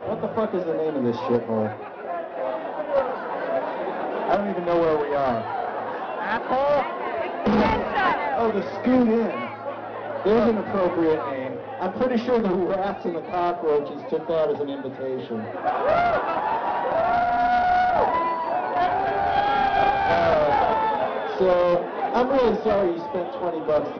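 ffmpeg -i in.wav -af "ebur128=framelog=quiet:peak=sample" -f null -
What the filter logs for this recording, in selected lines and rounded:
Integrated loudness:
  I:         -23.4 LUFS
  Threshold: -33.4 LUFS
Loudness range:
  LRA:         4.9 LU
  Threshold: -43.3 LUFS
  LRA low:   -26.0 LUFS
  LRA high:  -21.1 LUFS
Sample peak:
  Peak:       -9.3 dBFS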